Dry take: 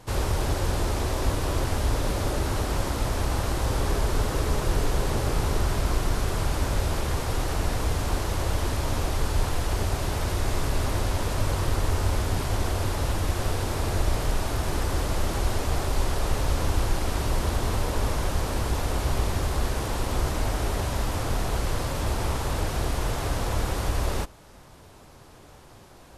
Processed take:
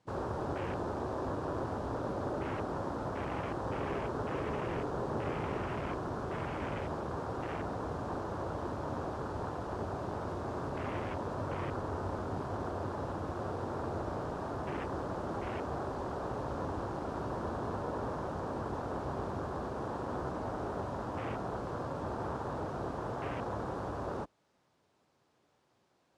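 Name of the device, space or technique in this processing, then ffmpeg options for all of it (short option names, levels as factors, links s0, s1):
over-cleaned archive recording: -af "highpass=150,lowpass=6800,afwtdn=0.0178,volume=0.562"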